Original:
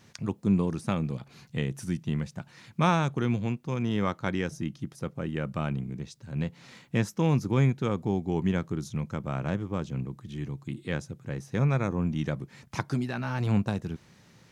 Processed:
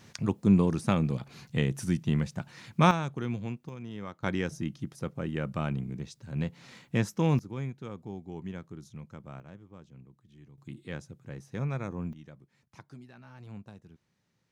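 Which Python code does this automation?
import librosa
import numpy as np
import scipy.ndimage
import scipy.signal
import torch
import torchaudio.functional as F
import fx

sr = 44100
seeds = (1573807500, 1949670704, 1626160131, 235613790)

y = fx.gain(x, sr, db=fx.steps((0.0, 2.5), (2.91, -6.0), (3.69, -12.5), (4.23, -1.0), (7.39, -12.5), (9.4, -19.0), (10.58, -7.5), (12.13, -19.5)))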